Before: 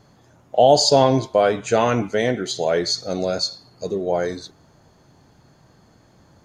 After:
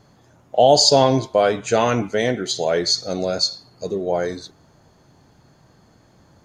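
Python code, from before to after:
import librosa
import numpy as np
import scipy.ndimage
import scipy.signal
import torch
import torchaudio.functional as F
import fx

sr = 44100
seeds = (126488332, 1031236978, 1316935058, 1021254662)

y = fx.dynamic_eq(x, sr, hz=5300.0, q=0.78, threshold_db=-33.0, ratio=4.0, max_db=4)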